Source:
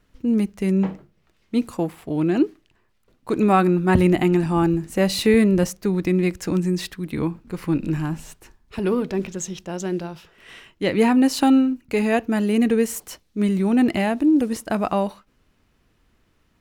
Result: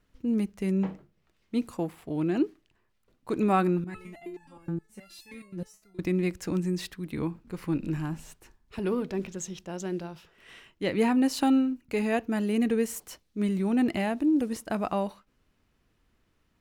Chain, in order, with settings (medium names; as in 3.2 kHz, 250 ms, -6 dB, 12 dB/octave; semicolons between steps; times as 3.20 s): 3.84–5.99 s: resonator arpeggio 9.5 Hz 170–870 Hz; trim -7 dB